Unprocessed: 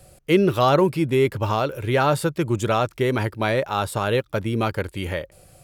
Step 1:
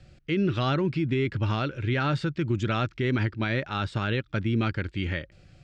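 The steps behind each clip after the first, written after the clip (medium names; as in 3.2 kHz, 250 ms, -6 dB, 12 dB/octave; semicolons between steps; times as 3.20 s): high-order bell 690 Hz -11 dB; peak limiter -17 dBFS, peak gain reduction 9.5 dB; Bessel low-pass 3.7 kHz, order 6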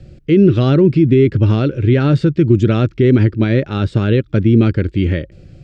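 resonant low shelf 620 Hz +9.5 dB, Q 1.5; trim +4.5 dB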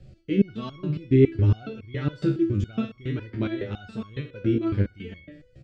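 feedback delay 64 ms, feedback 58%, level -13 dB; resonator arpeggio 7.2 Hz 67–1100 Hz; trim -1 dB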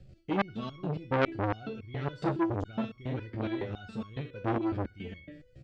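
transformer saturation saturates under 1.6 kHz; trim -2.5 dB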